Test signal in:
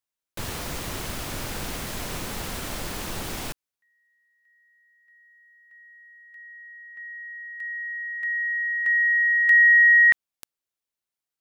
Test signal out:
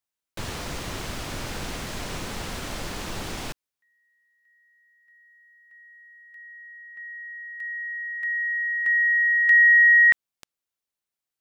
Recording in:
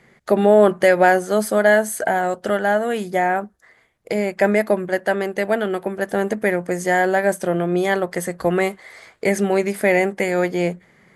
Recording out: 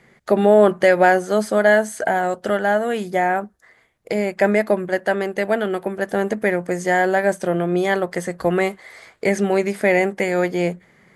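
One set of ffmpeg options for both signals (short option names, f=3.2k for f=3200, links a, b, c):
-filter_complex "[0:a]acrossover=split=8400[a][b];[b]acompressor=threshold=-49dB:ratio=4:attack=1:release=60[c];[a][c]amix=inputs=2:normalize=0"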